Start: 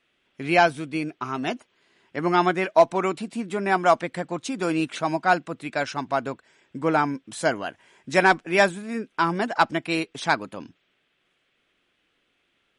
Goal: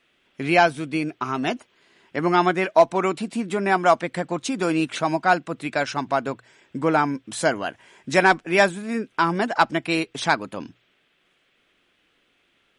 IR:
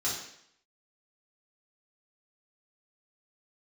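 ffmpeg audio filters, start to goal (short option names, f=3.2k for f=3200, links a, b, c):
-filter_complex "[0:a]bandreject=f=60:t=h:w=6,bandreject=f=120:t=h:w=6,asplit=2[a][b];[b]acompressor=threshold=-29dB:ratio=6,volume=-2.5dB[c];[a][c]amix=inputs=2:normalize=0"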